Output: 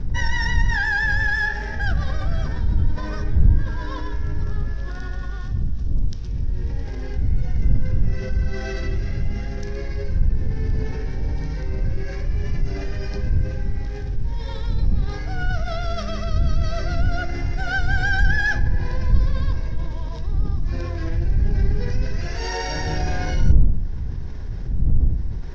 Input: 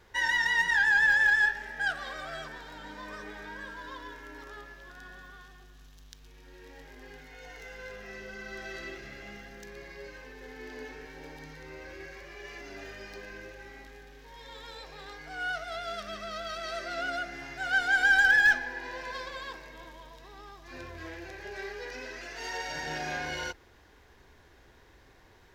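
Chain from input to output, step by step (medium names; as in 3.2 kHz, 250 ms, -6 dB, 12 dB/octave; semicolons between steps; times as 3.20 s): wind noise 95 Hz -33 dBFS; resonant low-pass 5.5 kHz, resonance Q 4.6; tilt EQ -3.5 dB/octave; level flattener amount 50%; trim -10 dB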